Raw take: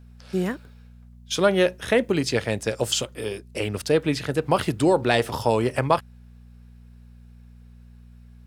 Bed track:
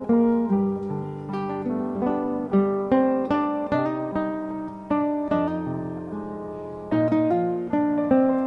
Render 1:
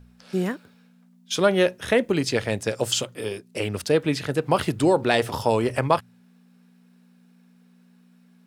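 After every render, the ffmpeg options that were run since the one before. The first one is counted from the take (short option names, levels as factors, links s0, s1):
-af "bandreject=f=60:t=h:w=4,bandreject=f=120:t=h:w=4"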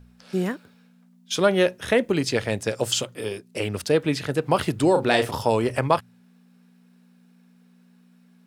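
-filter_complex "[0:a]asettb=1/sr,asplit=3[s0][s1][s2];[s0]atrim=end=4.914[s3];[s1]atrim=start=4.91:end=5.31,asetpts=PTS-STARTPTS,afade=t=in:d=0.004:c=qsin,afade=t=out:st=0.396:d=0.004:c=qsin,asplit=2[s4][s5];[s5]adelay=37,volume=0.447[s6];[s4][s6]amix=inputs=2:normalize=0,atrim=end_sample=17640[s7];[s2]atrim=start=5.306[s8];[s3][s7]acrossfade=d=0.004:c1=hsin:c2=qsin[s9];[s9][s8]acrossfade=d=0.004:c1=qsin:c2=hsin"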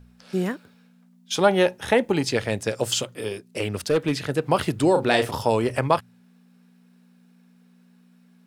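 -filter_complex "[0:a]asettb=1/sr,asplit=3[s0][s1][s2];[s0]atrim=end=1.344[s3];[s1]atrim=start=1.34:end=2.3,asetpts=PTS-STARTPTS,afade=t=in:d=0.004:c=qsin,afade=t=out:st=0.956:d=0.004:c=qsin,equalizer=f=840:w=7.3:g=14.5[s4];[s2]atrim=start=2.296[s5];[s3][s4]acrossfade=d=0.004:c1=hsin:c2=qsin[s6];[s6][s5]acrossfade=d=0.004:c1=qsin:c2=hsin,asettb=1/sr,asplit=3[s7][s8][s9];[s7]atrim=end=2.834[s10];[s8]atrim=start=2.83:end=4.25,asetpts=PTS-STARTPTS,afade=t=in:d=0.004:c=qsin,afade=t=out:st=1.416:d=0.004:c=qsin,asoftclip=type=hard:threshold=0.178[s11];[s9]atrim=start=4.246[s12];[s10][s11]acrossfade=d=0.004:c1=hsin:c2=qsin[s13];[s13][s12]acrossfade=d=0.004:c1=qsin:c2=hsin"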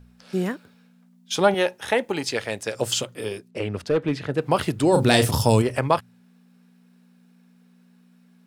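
-filter_complex "[0:a]asettb=1/sr,asplit=3[s0][s1][s2];[s0]atrim=end=1.544[s3];[s1]atrim=start=1.54:end=2.75,asetpts=PTS-STARTPTS,afade=t=in:d=0.004:c=qsin,afade=t=out:st=1.206:d=0.004:c=qsin,lowshelf=f=290:g=-11[s4];[s2]atrim=start=2.746[s5];[s3][s4]acrossfade=d=0.004:c1=hsin:c2=qsin[s6];[s6][s5]acrossfade=d=0.004:c1=qsin:c2=hsin,asplit=3[s7][s8][s9];[s7]afade=t=out:st=3.48:d=0.02[s10];[s8]aemphasis=mode=reproduction:type=75kf,afade=t=in:st=3.48:d=0.02,afade=t=out:st=4.37:d=0.02[s11];[s9]afade=t=in:st=4.37:d=0.02[s12];[s10][s11][s12]amix=inputs=3:normalize=0,asplit=3[s13][s14][s15];[s13]afade=t=out:st=4.92:d=0.02[s16];[s14]bass=f=250:g=12,treble=f=4000:g=12,afade=t=in:st=4.92:d=0.02,afade=t=out:st=5.61:d=0.02[s17];[s15]afade=t=in:st=5.61:d=0.02[s18];[s16][s17][s18]amix=inputs=3:normalize=0"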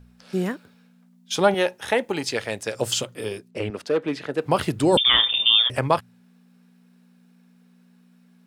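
-filter_complex "[0:a]asettb=1/sr,asplit=3[s0][s1][s2];[s0]atrim=end=3.704[s3];[s1]atrim=start=3.7:end=4.46,asetpts=PTS-STARTPTS,afade=t=in:d=0.004:c=qsin,afade=t=out:st=0.756:d=0.004:c=qsin,highpass=250[s4];[s2]atrim=start=4.456[s5];[s3][s4]acrossfade=d=0.004:c1=hsin:c2=qsin[s6];[s6][s5]acrossfade=d=0.004:c1=qsin:c2=hsin,asettb=1/sr,asplit=3[s7][s8][s9];[s7]atrim=end=4.974[s10];[s8]atrim=start=4.97:end=5.7,asetpts=PTS-STARTPTS,afade=t=in:d=0.004:c=qsin,afade=t=out:st=0.726:d=0.004:c=qsin,lowpass=f=3100:t=q:w=0.5098,lowpass=f=3100:t=q:w=0.6013,lowpass=f=3100:t=q:w=0.9,lowpass=f=3100:t=q:w=2.563,afreqshift=-3700[s11];[s9]atrim=start=5.696[s12];[s10][s11]acrossfade=d=0.004:c1=hsin:c2=qsin[s13];[s13][s12]acrossfade=d=0.004:c1=qsin:c2=hsin"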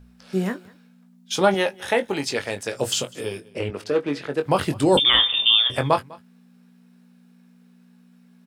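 -filter_complex "[0:a]asplit=2[s0][s1];[s1]adelay=21,volume=0.398[s2];[s0][s2]amix=inputs=2:normalize=0,aecho=1:1:200:0.0708"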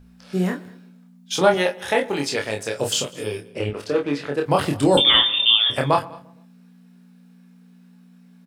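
-filter_complex "[0:a]asplit=2[s0][s1];[s1]adelay=28,volume=0.631[s2];[s0][s2]amix=inputs=2:normalize=0,asplit=2[s3][s4];[s4]adelay=116,lowpass=f=1400:p=1,volume=0.106,asplit=2[s5][s6];[s6]adelay=116,lowpass=f=1400:p=1,volume=0.48,asplit=2[s7][s8];[s8]adelay=116,lowpass=f=1400:p=1,volume=0.48,asplit=2[s9][s10];[s10]adelay=116,lowpass=f=1400:p=1,volume=0.48[s11];[s3][s5][s7][s9][s11]amix=inputs=5:normalize=0"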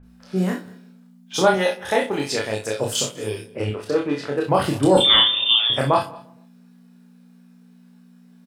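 -filter_complex "[0:a]asplit=2[s0][s1];[s1]adelay=37,volume=0.447[s2];[s0][s2]amix=inputs=2:normalize=0,acrossover=split=2400[s3][s4];[s4]adelay=30[s5];[s3][s5]amix=inputs=2:normalize=0"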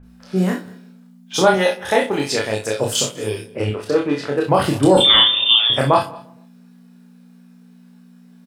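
-af "volume=1.5,alimiter=limit=0.794:level=0:latency=1"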